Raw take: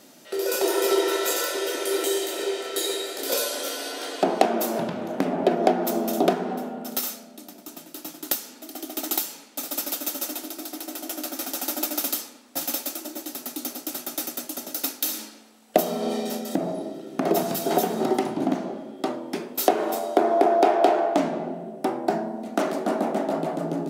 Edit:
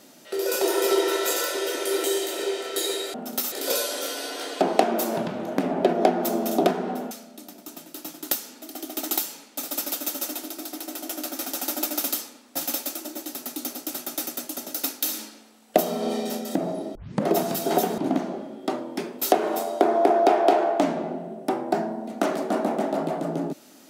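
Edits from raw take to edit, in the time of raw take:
0:06.73–0:07.11: move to 0:03.14
0:16.95: tape start 0.32 s
0:17.98–0:18.34: remove

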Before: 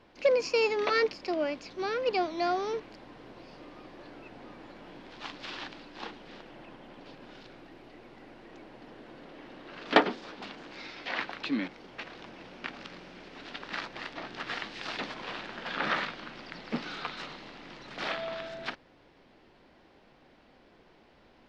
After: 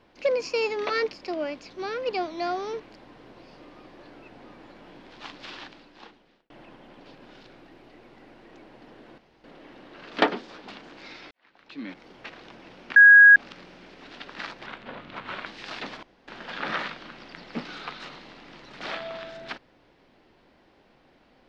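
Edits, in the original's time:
0:05.46–0:06.50: fade out linear
0:09.18: splice in room tone 0.26 s
0:11.05–0:11.79: fade in quadratic
0:12.70: insert tone 1,650 Hz −8 dBFS 0.40 s
0:14.00–0:14.63: play speed 79%
0:15.20–0:15.45: fill with room tone

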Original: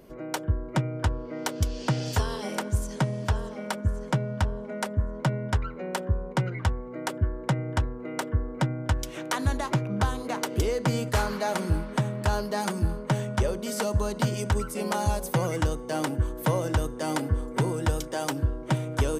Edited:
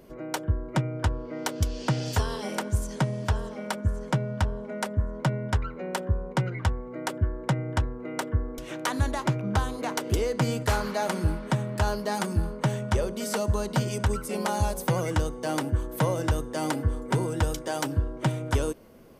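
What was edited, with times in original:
0:08.58–0:09.04: remove

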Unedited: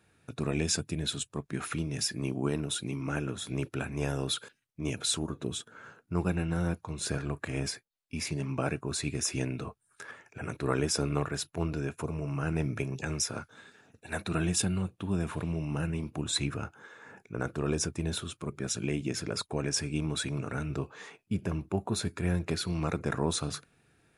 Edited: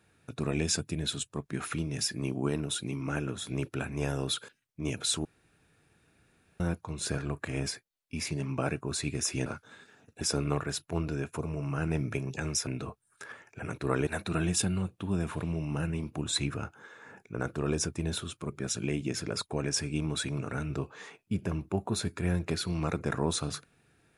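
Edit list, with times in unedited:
0:05.25–0:06.60: fill with room tone
0:09.46–0:10.86: swap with 0:13.32–0:14.07

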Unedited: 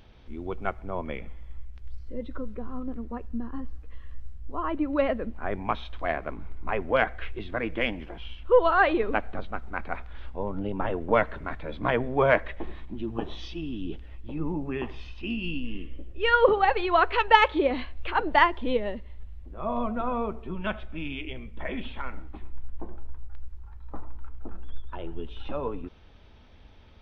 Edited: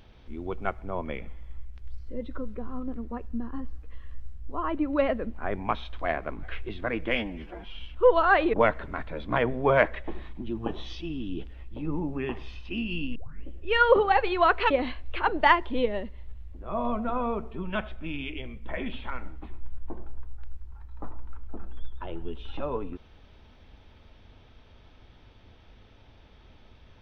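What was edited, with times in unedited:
0:06.43–0:07.13: remove
0:07.85–0:08.28: time-stretch 1.5×
0:09.02–0:11.06: remove
0:15.68: tape start 0.30 s
0:17.23–0:17.62: remove

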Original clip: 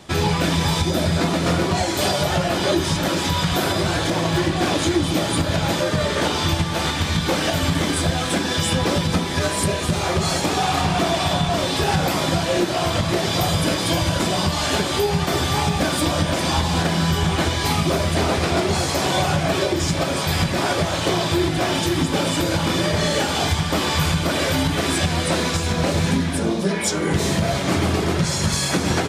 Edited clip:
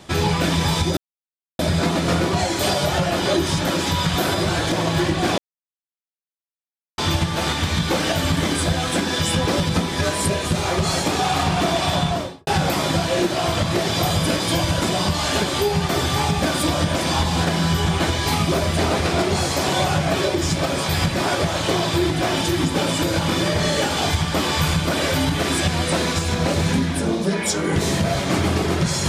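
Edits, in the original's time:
0:00.97: splice in silence 0.62 s
0:04.76–0:06.36: silence
0:11.42–0:11.85: fade out and dull

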